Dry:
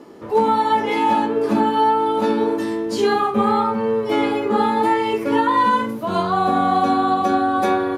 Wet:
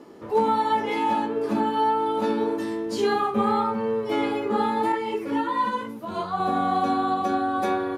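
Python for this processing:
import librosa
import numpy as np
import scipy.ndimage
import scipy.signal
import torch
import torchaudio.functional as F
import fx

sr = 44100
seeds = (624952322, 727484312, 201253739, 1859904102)

y = fx.rider(x, sr, range_db=10, speed_s=2.0)
y = fx.ensemble(y, sr, at=(4.92, 6.4))
y = F.gain(torch.from_numpy(y), -6.0).numpy()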